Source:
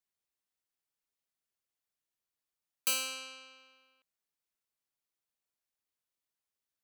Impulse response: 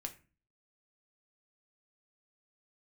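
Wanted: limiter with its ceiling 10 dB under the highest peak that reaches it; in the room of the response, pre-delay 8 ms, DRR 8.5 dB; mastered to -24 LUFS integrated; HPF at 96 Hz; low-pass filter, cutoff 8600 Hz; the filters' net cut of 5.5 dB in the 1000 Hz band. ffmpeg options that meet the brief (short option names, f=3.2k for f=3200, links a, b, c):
-filter_complex "[0:a]highpass=96,lowpass=8.6k,equalizer=f=1k:t=o:g=-7.5,alimiter=level_in=9dB:limit=-24dB:level=0:latency=1,volume=-9dB,asplit=2[a][b];[1:a]atrim=start_sample=2205,adelay=8[c];[b][c]afir=irnorm=-1:irlink=0,volume=-6dB[d];[a][d]amix=inputs=2:normalize=0,volume=17.5dB"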